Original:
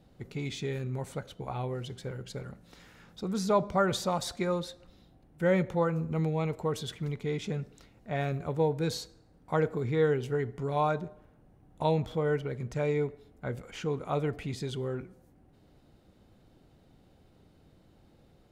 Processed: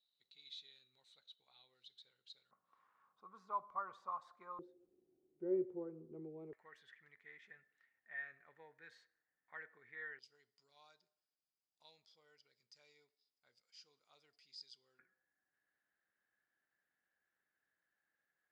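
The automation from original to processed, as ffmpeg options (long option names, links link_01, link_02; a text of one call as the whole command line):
ffmpeg -i in.wav -af "asetnsamples=nb_out_samples=441:pad=0,asendcmd='2.51 bandpass f 1100;4.59 bandpass f 370;6.53 bandpass f 1800;10.19 bandpass f 4900;14.99 bandpass f 1700',bandpass=frequency=3900:width_type=q:width=16:csg=0" out.wav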